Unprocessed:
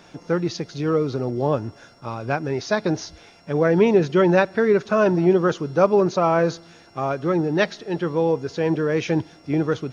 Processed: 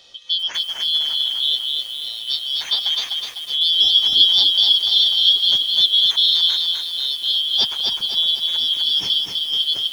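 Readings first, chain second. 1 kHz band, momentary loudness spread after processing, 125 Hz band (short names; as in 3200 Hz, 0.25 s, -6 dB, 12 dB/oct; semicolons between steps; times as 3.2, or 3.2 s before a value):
under -15 dB, 10 LU, under -25 dB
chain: four-band scrambler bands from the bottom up 3412; lo-fi delay 0.252 s, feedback 55%, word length 7-bit, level -3 dB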